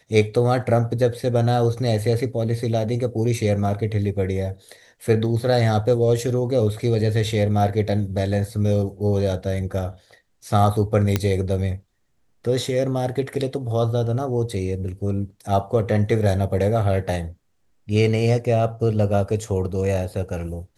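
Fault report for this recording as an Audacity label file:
11.160000	11.160000	pop -5 dBFS

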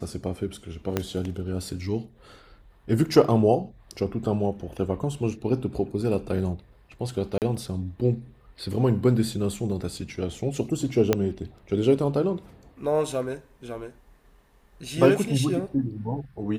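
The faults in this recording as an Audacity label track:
0.970000	0.970000	pop -10 dBFS
7.380000	7.420000	gap 38 ms
11.130000	11.130000	pop -6 dBFS

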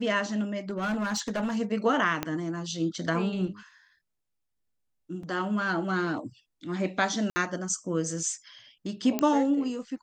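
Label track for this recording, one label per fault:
0.690000	1.570000	clipped -25 dBFS
2.230000	2.230000	pop -13 dBFS
5.230000	5.230000	gap 4.1 ms
7.300000	7.360000	gap 60 ms
9.190000	9.190000	pop -11 dBFS

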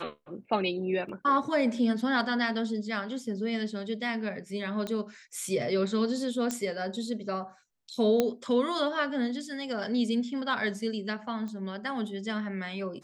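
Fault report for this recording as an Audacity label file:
1.090000	1.090000	gap 2.6 ms
4.870000	4.870000	pop -21 dBFS
6.510000	6.510000	pop -16 dBFS
8.200000	8.200000	pop -11 dBFS
11.480000	11.480000	pop -29 dBFS

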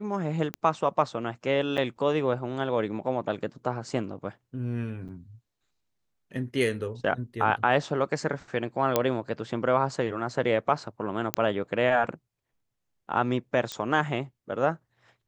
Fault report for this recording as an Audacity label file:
0.540000	0.540000	pop -16 dBFS
1.770000	1.780000	gap 7.9 ms
5.080000	5.090000	gap 7.8 ms
8.960000	8.960000	pop -7 dBFS
11.340000	11.340000	pop -6 dBFS
13.720000	13.720000	pop -17 dBFS

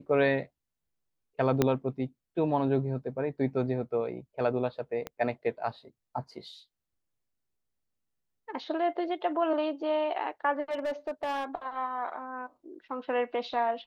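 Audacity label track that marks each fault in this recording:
1.620000	1.620000	pop -10 dBFS
5.070000	5.070000	pop -21 dBFS
10.710000	11.450000	clipped -27.5 dBFS

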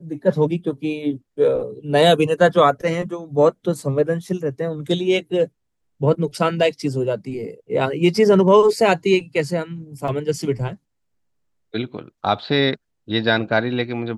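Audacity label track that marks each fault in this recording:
10.080000	10.080000	gap 2.8 ms

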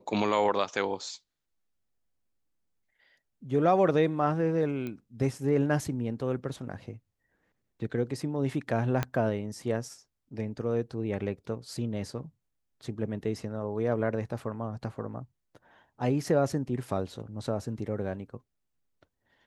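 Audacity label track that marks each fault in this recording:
4.870000	4.870000	pop -24 dBFS
9.030000	9.030000	pop -14 dBFS

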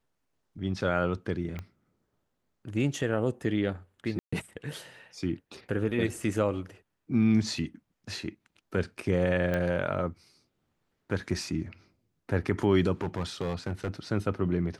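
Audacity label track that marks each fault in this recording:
1.590000	1.590000	pop -24 dBFS
4.190000	4.330000	gap 0.135 s
9.540000	9.540000	pop -18 dBFS
13.010000	13.890000	clipped -26 dBFS

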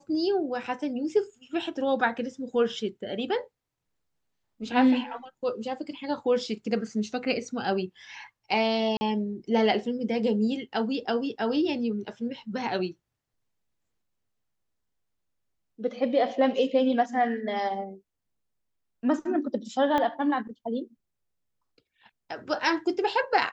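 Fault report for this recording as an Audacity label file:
8.970000	9.010000	gap 40 ms
19.980000	19.980000	pop -15 dBFS

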